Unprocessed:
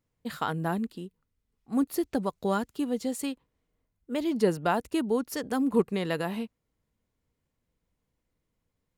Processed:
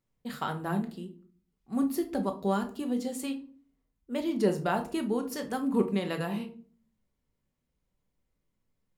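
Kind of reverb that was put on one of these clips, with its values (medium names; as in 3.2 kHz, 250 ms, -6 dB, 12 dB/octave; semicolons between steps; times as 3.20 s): simulated room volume 320 m³, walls furnished, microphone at 1.1 m; trim -3.5 dB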